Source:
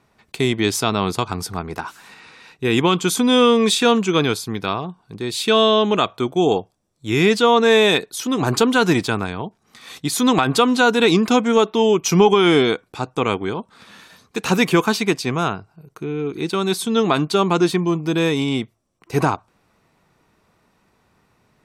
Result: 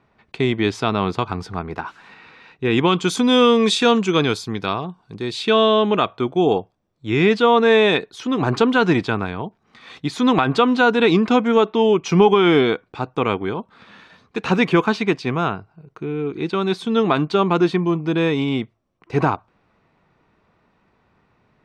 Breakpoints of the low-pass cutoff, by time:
2.67 s 3.1 kHz
3.18 s 6.2 kHz
5.16 s 6.2 kHz
5.56 s 3.2 kHz

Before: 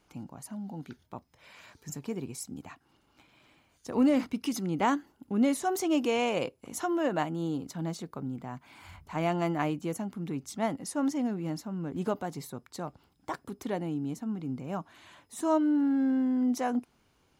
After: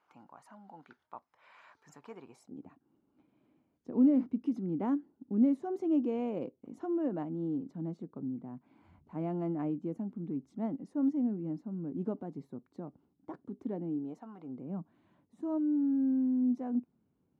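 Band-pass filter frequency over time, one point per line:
band-pass filter, Q 1.5
2.24 s 1.1 kHz
2.68 s 260 Hz
13.88 s 260 Hz
14.32 s 1.1 kHz
14.74 s 200 Hz

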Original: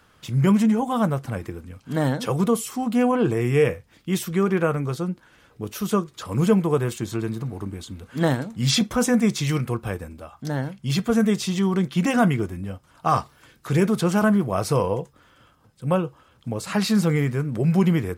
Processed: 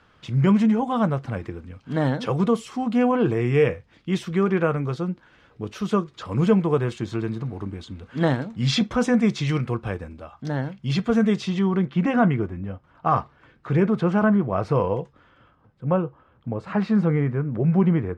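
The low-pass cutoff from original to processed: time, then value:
11.33 s 4.1 kHz
11.90 s 2.1 kHz
14.72 s 2.1 kHz
15.01 s 3.6 kHz
15.86 s 1.6 kHz

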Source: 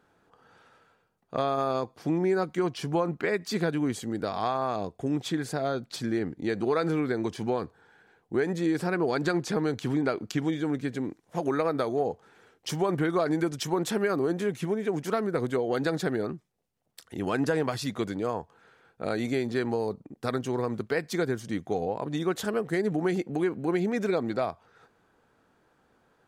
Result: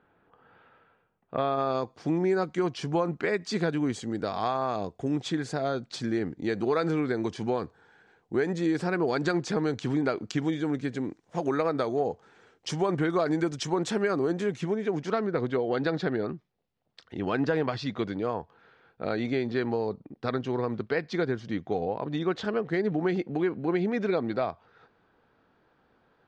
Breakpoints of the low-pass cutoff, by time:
low-pass 24 dB/octave
1.35 s 3.1 kHz
1.92 s 7.7 kHz
14.48 s 7.7 kHz
15.43 s 4.7 kHz

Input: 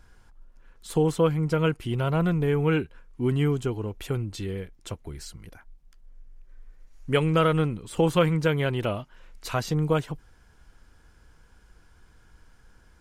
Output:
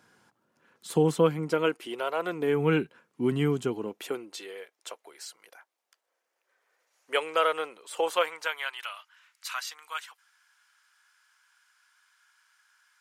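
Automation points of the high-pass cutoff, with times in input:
high-pass 24 dB/octave
1.15 s 150 Hz
2.15 s 460 Hz
2.62 s 160 Hz
3.68 s 160 Hz
4.52 s 510 Hz
8.13 s 510 Hz
8.85 s 1.2 kHz

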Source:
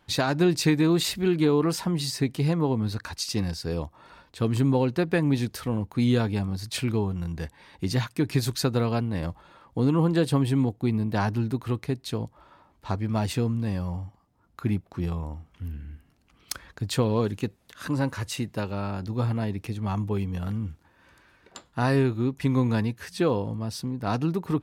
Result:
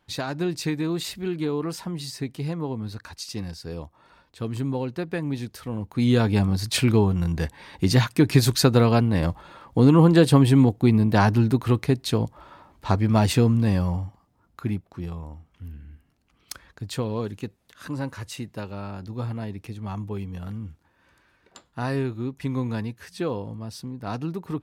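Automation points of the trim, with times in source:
5.61 s -5 dB
6.40 s +7 dB
13.78 s +7 dB
15.03 s -4 dB

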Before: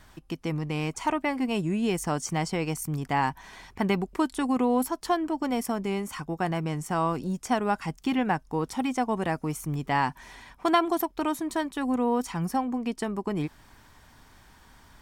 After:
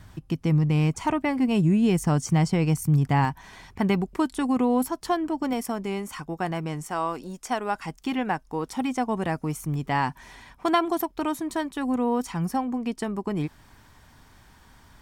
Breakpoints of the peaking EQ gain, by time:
peaking EQ 110 Hz 1.9 oct
+14 dB
from 3.25 s +6.5 dB
from 5.53 s -1.5 dB
from 6.88 s -13.5 dB
from 7.75 s -4.5 dB
from 8.77 s +3.5 dB

